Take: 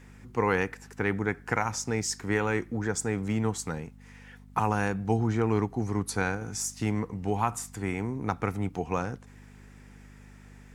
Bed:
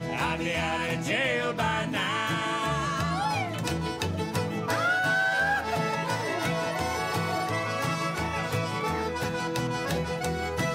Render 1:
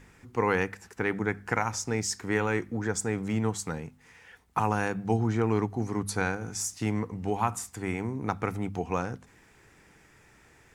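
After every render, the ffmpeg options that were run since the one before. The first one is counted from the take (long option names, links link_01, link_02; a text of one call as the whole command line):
ffmpeg -i in.wav -af "bandreject=frequency=50:width_type=h:width=4,bandreject=frequency=100:width_type=h:width=4,bandreject=frequency=150:width_type=h:width=4,bandreject=frequency=200:width_type=h:width=4,bandreject=frequency=250:width_type=h:width=4" out.wav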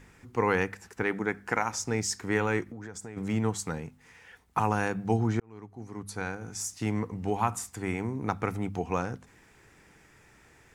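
ffmpeg -i in.wav -filter_complex "[0:a]asettb=1/sr,asplit=3[link_01][link_02][link_03];[link_01]atrim=end=1.034[link_04];[link_02]atrim=start=1.03:end=1.8,asetpts=PTS-STARTPTS,afade=type=in:duration=0.004:curve=qsin,afade=type=out:start_time=0.766:duration=0.004:curve=qsin,equalizer=frequency=96:width=1.3:gain=-9.5[link_05];[link_03]atrim=start=1.796[link_06];[link_04][link_05]acrossfade=duration=0.004:curve1=hsin:curve2=qsin[link_07];[link_07][link_06]acrossfade=duration=0.004:curve1=qsin:curve2=hsin,asplit=3[link_08][link_09][link_10];[link_08]afade=type=out:start_time=2.63:duration=0.02[link_11];[link_09]acompressor=threshold=-37dB:ratio=10:attack=3.2:release=140:knee=1:detection=peak,afade=type=in:start_time=2.63:duration=0.02,afade=type=out:start_time=3.16:duration=0.02[link_12];[link_10]afade=type=in:start_time=3.16:duration=0.02[link_13];[link_11][link_12][link_13]amix=inputs=3:normalize=0,asplit=2[link_14][link_15];[link_14]atrim=end=5.4,asetpts=PTS-STARTPTS,afade=type=out:start_time=5.396:duration=0.004:curve=hsin[link_16];[link_15]atrim=start=5.4,asetpts=PTS-STARTPTS,afade=type=in:duration=1.65[link_17];[link_16][link_17]concat=n=2:v=0:a=1" out.wav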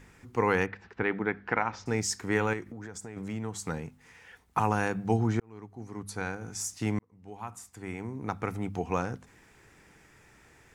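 ffmpeg -i in.wav -filter_complex "[0:a]asettb=1/sr,asplit=3[link_01][link_02][link_03];[link_01]atrim=end=0.664[link_04];[link_02]atrim=start=0.66:end=1.86,asetpts=PTS-STARTPTS,afade=type=in:duration=0.004:curve=qsin,afade=type=out:start_time=1.196:duration=0.004:curve=qsin,lowpass=frequency=3900:width=0.5412,lowpass=frequency=3900:width=1.3066[link_05];[link_03]atrim=start=1.856[link_06];[link_04][link_05]acrossfade=duration=0.004:curve1=hsin:curve2=qsin[link_07];[link_07][link_06]acrossfade=duration=0.004:curve1=qsin:curve2=hsin,asettb=1/sr,asplit=3[link_08][link_09][link_10];[link_08]atrim=end=2.534[link_11];[link_09]atrim=start=2.53:end=3.67,asetpts=PTS-STARTPTS,afade=type=in:duration=0.004:curve=qsin,afade=type=out:start_time=1.136:duration=0.004:curve=qsin,acompressor=threshold=-36dB:ratio=2:attack=3.2:release=140:knee=1:detection=peak[link_12];[link_10]atrim=start=3.666[link_13];[link_11][link_12]acrossfade=duration=0.004:curve1=hsin:curve2=qsin[link_14];[link_14][link_13]acrossfade=duration=0.004:curve1=qsin:curve2=hsin,asplit=2[link_15][link_16];[link_15]atrim=end=6.99,asetpts=PTS-STARTPTS,afade=type=out:start_time=6.986:duration=0.004:curve=hsin[link_17];[link_16]atrim=start=6.99,asetpts=PTS-STARTPTS,afade=type=in:duration=1.94[link_18];[link_17][link_18]concat=n=2:v=0:a=1" out.wav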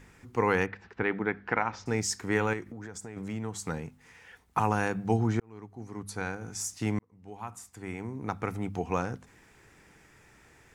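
ffmpeg -i in.wav -af anull out.wav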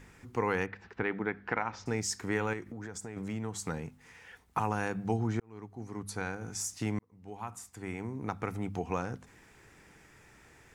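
ffmpeg -i in.wav -af "acompressor=threshold=-34dB:ratio=1.5" out.wav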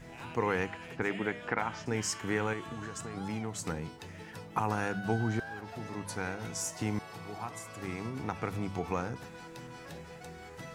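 ffmpeg -i in.wav -i bed.wav -filter_complex "[1:a]volume=-17.5dB[link_01];[0:a][link_01]amix=inputs=2:normalize=0" out.wav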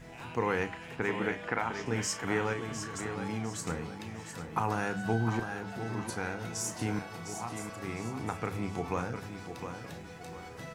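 ffmpeg -i in.wav -filter_complex "[0:a]asplit=2[link_01][link_02];[link_02]adelay=35,volume=-11dB[link_03];[link_01][link_03]amix=inputs=2:normalize=0,aecho=1:1:706|1412|2118|2824:0.376|0.135|0.0487|0.0175" out.wav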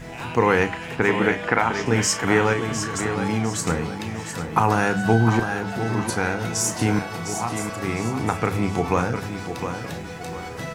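ffmpeg -i in.wav -af "volume=12dB" out.wav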